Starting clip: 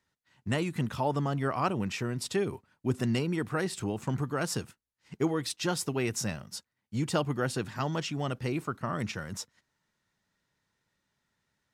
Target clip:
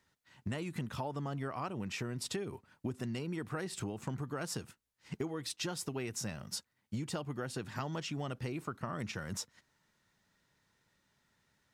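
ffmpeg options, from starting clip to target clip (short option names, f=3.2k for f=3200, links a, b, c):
-af "acompressor=threshold=-39dB:ratio=12,volume=4dB"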